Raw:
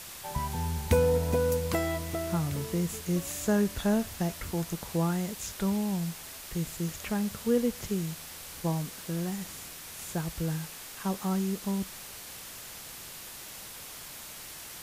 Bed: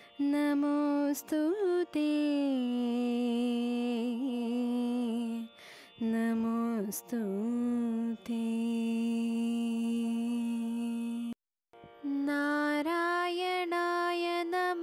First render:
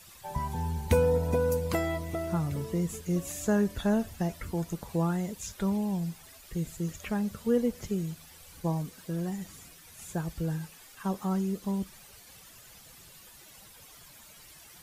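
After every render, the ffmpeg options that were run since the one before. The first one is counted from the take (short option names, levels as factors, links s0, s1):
-af "afftdn=nr=12:nf=-44"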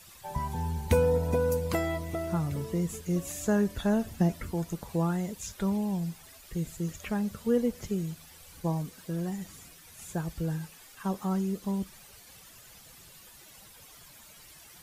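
-filter_complex "[0:a]asettb=1/sr,asplit=3[s0][s1][s2];[s0]atrim=end=4.064[s3];[s1]atrim=start=4.06:end=4.46,asetpts=PTS-STARTPTS,afade=t=in:d=0.004:c=qsin,afade=t=out:st=0.396:d=0.004:c=qsin,equalizer=f=230:t=o:w=1.6:g=7.5[s4];[s2]atrim=start=4.456[s5];[s3][s4]acrossfade=d=0.004:c1=hsin:c2=qsin[s6];[s6][s5]acrossfade=d=0.004:c1=qsin:c2=hsin"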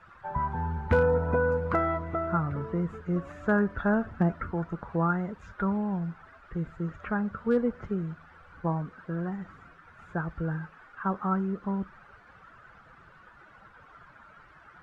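-af "lowpass=f=1400:t=q:w=5,volume=5.96,asoftclip=hard,volume=0.168"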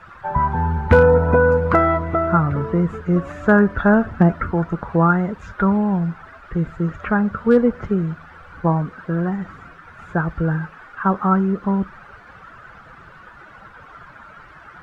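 -af "volume=3.55"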